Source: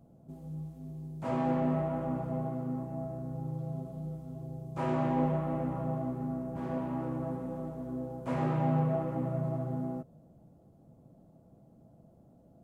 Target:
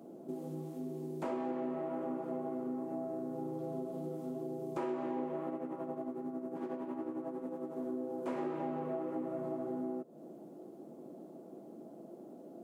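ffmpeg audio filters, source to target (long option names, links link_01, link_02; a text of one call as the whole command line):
ffmpeg -i in.wav -filter_complex "[0:a]highpass=frequency=230:width=0.5412,highpass=frequency=230:width=1.3066,equalizer=frequency=360:width=3.2:gain=11.5,acompressor=threshold=-46dB:ratio=5,asplit=3[link_01][link_02][link_03];[link_01]afade=type=out:start_time=5.49:duration=0.02[link_04];[link_02]tremolo=f=11:d=0.55,afade=type=in:start_time=5.49:duration=0.02,afade=type=out:start_time=7.75:duration=0.02[link_05];[link_03]afade=type=in:start_time=7.75:duration=0.02[link_06];[link_04][link_05][link_06]amix=inputs=3:normalize=0,volume=9dB" out.wav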